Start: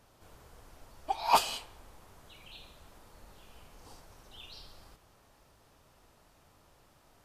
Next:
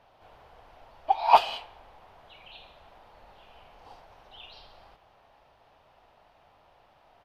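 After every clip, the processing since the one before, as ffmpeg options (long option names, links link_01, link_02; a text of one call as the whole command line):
ffmpeg -i in.wav -af "firequalizer=gain_entry='entry(300,0);entry(730,14);entry(1200,6);entry(2900,8);entry(7500,-14);entry(13000,-10)':delay=0.05:min_phase=1,volume=-4dB" out.wav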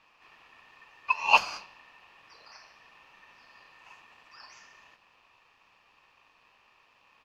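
ffmpeg -i in.wav -af "aeval=exprs='val(0)*sin(2*PI*1800*n/s)':channel_layout=same" out.wav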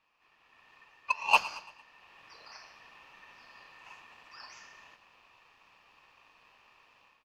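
ffmpeg -i in.wav -af "dynaudnorm=framelen=370:gausssize=3:maxgain=13dB,aeval=exprs='0.944*(cos(1*acos(clip(val(0)/0.944,-1,1)))-cos(1*PI/2))+0.0422*(cos(7*acos(clip(val(0)/0.944,-1,1)))-cos(7*PI/2))':channel_layout=same,aecho=1:1:113|226|339|452:0.126|0.0592|0.0278|0.0131,volume=-8.5dB" out.wav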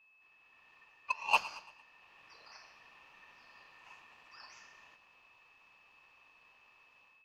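ffmpeg -i in.wav -af "aeval=exprs='val(0)+0.00112*sin(2*PI*2600*n/s)':channel_layout=same,volume=-5dB" out.wav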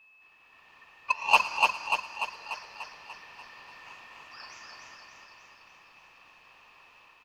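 ffmpeg -i in.wav -af "aecho=1:1:294|588|882|1176|1470|1764|2058|2352:0.708|0.411|0.238|0.138|0.0801|0.0465|0.027|0.0156,volume=7.5dB" out.wav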